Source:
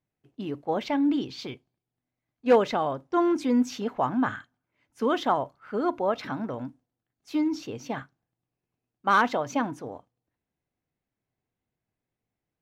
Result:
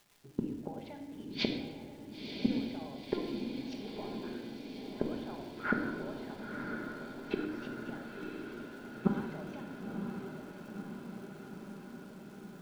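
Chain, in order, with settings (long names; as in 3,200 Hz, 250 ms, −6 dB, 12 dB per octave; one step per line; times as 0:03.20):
low-pass filter 4,700 Hz
notch filter 1,200 Hz, Q 5.1
noise gate −50 dBFS, range −13 dB
low-pass that shuts in the quiet parts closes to 1,200 Hz, open at −21 dBFS
downward compressor, threshold −30 dBFS, peak gain reduction 14.5 dB
gate with flip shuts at −35 dBFS, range −34 dB
surface crackle 540 per second −71 dBFS
feedback delay with all-pass diffusion 996 ms, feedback 70%, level −6 dB
rectangular room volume 1,100 cubic metres, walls mixed, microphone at 1.3 metres
level +17.5 dB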